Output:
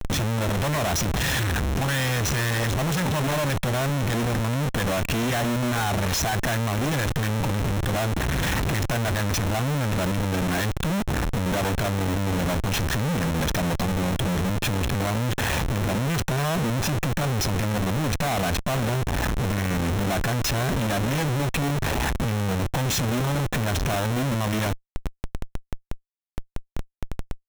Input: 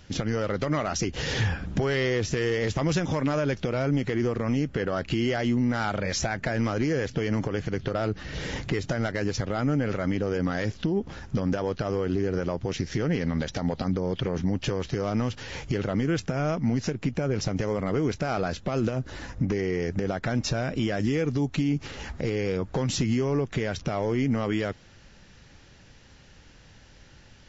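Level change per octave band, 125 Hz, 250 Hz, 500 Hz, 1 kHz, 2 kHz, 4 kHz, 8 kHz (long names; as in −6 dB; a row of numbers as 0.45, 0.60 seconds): +5.0 dB, +0.5 dB, −1.0 dB, +6.5 dB, +5.5 dB, +6.5 dB, can't be measured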